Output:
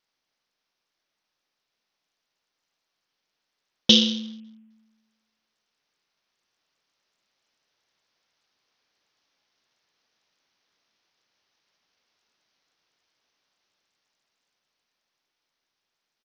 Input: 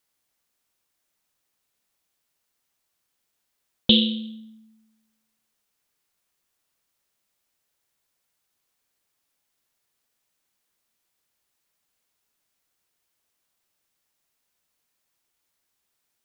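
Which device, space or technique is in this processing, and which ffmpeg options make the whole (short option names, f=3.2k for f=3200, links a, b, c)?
Bluetooth headset: -af "highpass=f=200:p=1,dynaudnorm=f=530:g=11:m=6.5dB,aresample=16000,aresample=44100" -ar 48000 -c:a sbc -b:a 64k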